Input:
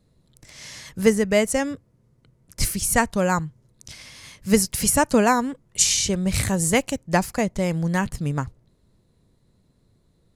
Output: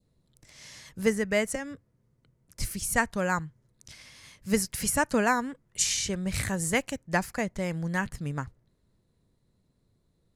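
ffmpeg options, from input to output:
ffmpeg -i in.wav -filter_complex "[0:a]asettb=1/sr,asplit=3[link_01][link_02][link_03];[link_01]atrim=end=1.554[link_04];[link_02]atrim=start=1.55:end=2.71,asetpts=PTS-STARTPTS,afade=type=in:duration=0.004:curve=qsin,afade=type=out:start_time=1.156:duration=0.004:curve=qsin,acrossover=split=170[link_05][link_06];[link_06]acompressor=threshold=-26dB:ratio=5[link_07];[link_05][link_07]amix=inputs=2:normalize=0[link_08];[link_03]atrim=start=2.706[link_09];[link_04][link_08]acrossfade=duration=0.004:curve1=hsin:curve2=qsin[link_10];[link_10][link_09]acrossfade=duration=0.004:curve1=qsin:curve2=hsin,adynamicequalizer=threshold=0.0112:dfrequency=1700:dqfactor=1.6:tfrequency=1700:tqfactor=1.6:attack=5:release=100:ratio=0.375:range=3.5:mode=boostabove:tftype=bell,volume=-8dB" out.wav

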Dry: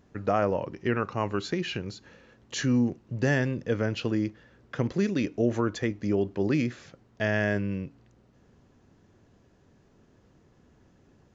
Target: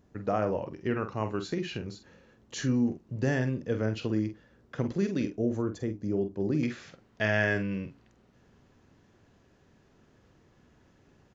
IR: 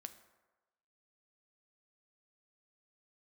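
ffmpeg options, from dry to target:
-filter_complex "[0:a]asetnsamples=nb_out_samples=441:pad=0,asendcmd='5.36 equalizer g -13.5;6.63 equalizer g 4.5',equalizer=frequency=2400:width_type=o:width=2.7:gain=-4,asplit=2[link_01][link_02];[link_02]adelay=46,volume=-9dB[link_03];[link_01][link_03]amix=inputs=2:normalize=0,volume=-2.5dB"

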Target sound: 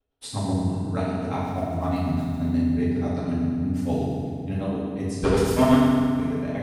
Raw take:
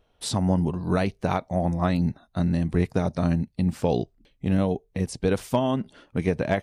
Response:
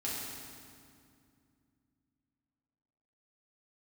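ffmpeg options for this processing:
-filter_complex "[0:a]asettb=1/sr,asplit=3[link_01][link_02][link_03];[link_01]atrim=end=1.404[link_04];[link_02]atrim=start=1.4:end=2.5,asetpts=PTS-STARTPTS,afade=type=in:duration=0.004:curve=qsin,afade=type=out:start_time=1.096:duration=0.004:curve=qsin,aeval=exprs='val(0)+0.5*0.0126*sgn(val(0))':channel_layout=same[link_05];[link_03]atrim=start=2.496[link_06];[link_04][link_05]acrossfade=duration=0.004:curve1=hsin:curve2=qsin[link_07];[link_07][link_06]acrossfade=duration=0.004:curve1=qsin:curve2=hsin,agate=range=-33dB:threshold=-57dB:ratio=3:detection=peak,asettb=1/sr,asplit=3[link_08][link_09][link_10];[link_08]atrim=end=5.154[link_11];[link_09]atrim=start=5.15:end=5.75,asetpts=PTS-STARTPTS,afade=type=in:duration=0.004:curve=qsin,afade=type=out:start_time=0.596:duration=0.004:curve=qsin,aeval=exprs='0.299*sin(PI/2*2.51*val(0)/0.299)':channel_layout=same[link_12];[link_10]atrim=start=5.746[link_13];[link_11][link_12]acrossfade=duration=0.004:curve1=hsin:curve2=qsin[link_14];[link_14][link_13]acrossfade=duration=0.004:curve1=qsin:curve2=hsin,tremolo=f=8.2:d=0.99[link_15];[1:a]atrim=start_sample=2205[link_16];[link_15][link_16]afir=irnorm=-1:irlink=0,volume=-2.5dB"

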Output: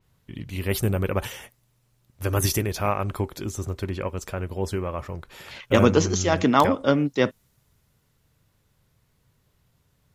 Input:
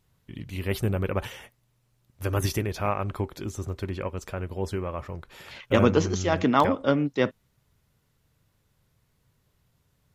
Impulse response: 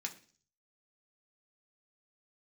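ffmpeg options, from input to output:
-af "adynamicequalizer=threshold=0.00447:dfrequency=4900:dqfactor=0.7:tfrequency=4900:tqfactor=0.7:attack=5:release=100:ratio=0.375:range=4:mode=boostabove:tftype=highshelf,volume=2.5dB"

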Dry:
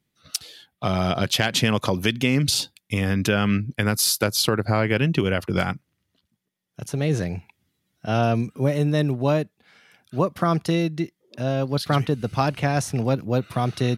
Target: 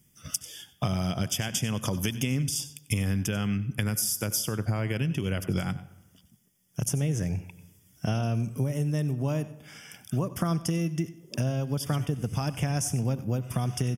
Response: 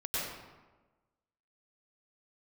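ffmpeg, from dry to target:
-filter_complex "[0:a]bass=frequency=250:gain=9,treble=frequency=4000:gain=14,alimiter=limit=-6.5dB:level=0:latency=1:release=497,acompressor=threshold=-30dB:ratio=6,asuperstop=centerf=4100:order=8:qfactor=3.3,aecho=1:1:94:0.133,asplit=2[link_01][link_02];[1:a]atrim=start_sample=2205,asetrate=57330,aresample=44100[link_03];[link_02][link_03]afir=irnorm=-1:irlink=0,volume=-20dB[link_04];[link_01][link_04]amix=inputs=2:normalize=0,volume=3.5dB"

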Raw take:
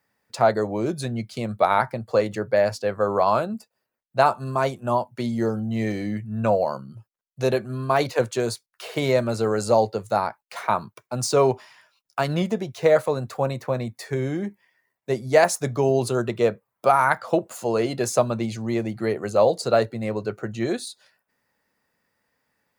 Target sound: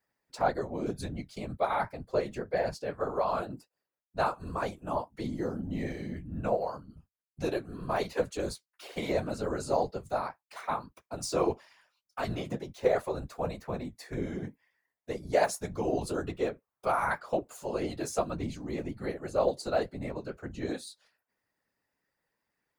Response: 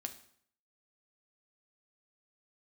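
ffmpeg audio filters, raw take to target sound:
-af "flanger=delay=7.3:depth=8.2:regen=-33:speed=1.9:shape=triangular,afftfilt=real='hypot(re,im)*cos(2*PI*random(0))':imag='hypot(re,im)*sin(2*PI*random(1))':win_size=512:overlap=0.75"

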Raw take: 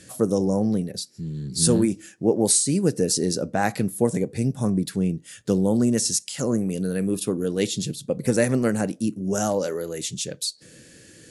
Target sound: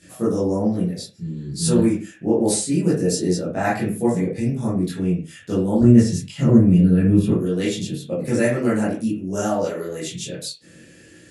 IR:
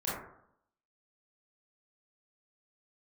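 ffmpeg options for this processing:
-filter_complex "[0:a]asettb=1/sr,asplit=3[link_01][link_02][link_03];[link_01]atrim=end=5.814[link_04];[link_02]atrim=start=5.81:end=7.3,asetpts=PTS-STARTPTS,afade=type=in:duration=0.004:curve=qsin,afade=type=out:start_time=1.486:duration=0.004:curve=qsin,bass=frequency=250:gain=15,treble=frequency=4000:gain=-8[link_05];[link_03]atrim=start=7.296[link_06];[link_04][link_05]acrossfade=duration=0.004:curve1=hsin:curve2=qsin[link_07];[link_07][link_06]acrossfade=duration=0.004:curve1=qsin:curve2=hsin[link_08];[1:a]atrim=start_sample=2205,afade=type=out:start_time=0.38:duration=0.01,atrim=end_sample=17199,asetrate=74970,aresample=44100[link_09];[link_08][link_09]afir=irnorm=-1:irlink=0"

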